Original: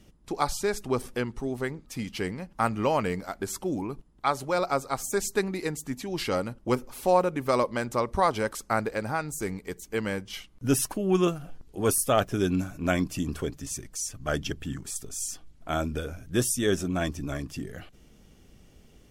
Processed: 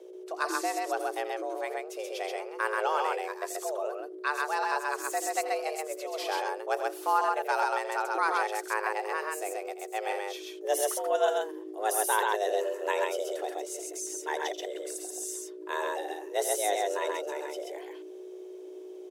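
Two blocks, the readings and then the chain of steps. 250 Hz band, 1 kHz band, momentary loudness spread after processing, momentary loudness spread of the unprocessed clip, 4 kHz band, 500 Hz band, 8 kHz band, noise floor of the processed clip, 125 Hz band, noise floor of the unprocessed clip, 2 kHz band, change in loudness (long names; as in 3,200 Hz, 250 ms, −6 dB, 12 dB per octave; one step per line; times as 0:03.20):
−12.5 dB, +1.5 dB, 10 LU, 10 LU, −2.5 dB, −2.0 dB, −2.5 dB, −44 dBFS, below −40 dB, −57 dBFS, +2.0 dB, −2.5 dB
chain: mains hum 60 Hz, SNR 14 dB
loudspeakers that aren't time-aligned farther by 29 metres −12 dB, 45 metres −2 dB
frequency shifter +310 Hz
level −5 dB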